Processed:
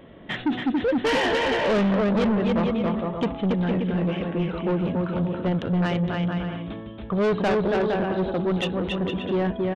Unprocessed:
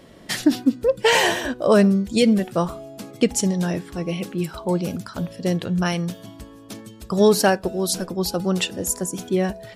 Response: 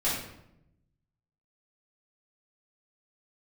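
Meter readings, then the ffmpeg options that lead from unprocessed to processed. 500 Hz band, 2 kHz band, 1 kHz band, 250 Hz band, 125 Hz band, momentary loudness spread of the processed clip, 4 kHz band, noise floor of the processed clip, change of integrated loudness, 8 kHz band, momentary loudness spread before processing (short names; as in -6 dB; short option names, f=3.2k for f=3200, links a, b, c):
-2.5 dB, -2.5 dB, -1.5 dB, -2.0 dB, 0.0 dB, 6 LU, -6.0 dB, -38 dBFS, -3.0 dB, under -20 dB, 14 LU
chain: -af "highshelf=f=2.9k:g=-6,aecho=1:1:280|462|580.3|657.2|707.2:0.631|0.398|0.251|0.158|0.1,aresample=8000,aresample=44100,asoftclip=type=tanh:threshold=-19.5dB,volume=1dB"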